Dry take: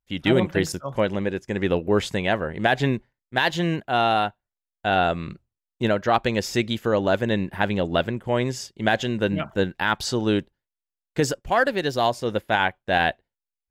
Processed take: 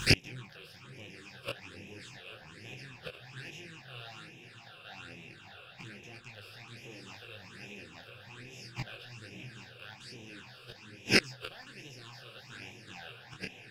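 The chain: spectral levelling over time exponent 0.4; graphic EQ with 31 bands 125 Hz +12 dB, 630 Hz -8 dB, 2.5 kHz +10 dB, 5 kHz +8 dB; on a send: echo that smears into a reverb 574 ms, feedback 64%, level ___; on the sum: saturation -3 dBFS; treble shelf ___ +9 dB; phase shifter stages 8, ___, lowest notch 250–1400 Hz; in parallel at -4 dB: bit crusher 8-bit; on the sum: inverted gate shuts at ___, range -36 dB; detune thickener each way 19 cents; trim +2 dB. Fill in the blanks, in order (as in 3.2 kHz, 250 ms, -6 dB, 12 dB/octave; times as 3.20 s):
-5.5 dB, 2 kHz, 1.2 Hz, -6 dBFS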